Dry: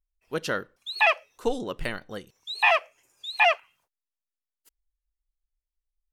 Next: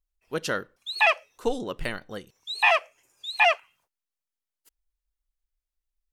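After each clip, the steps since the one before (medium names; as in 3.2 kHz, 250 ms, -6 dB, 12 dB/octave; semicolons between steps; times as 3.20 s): dynamic bell 7.8 kHz, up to +5 dB, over -44 dBFS, Q 0.98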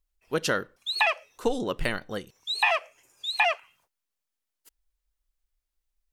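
compression 10:1, threshold -23 dBFS, peak gain reduction 8.5 dB; trim +3.5 dB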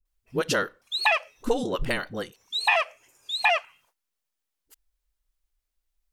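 phase dispersion highs, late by 54 ms, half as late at 310 Hz; trim +1.5 dB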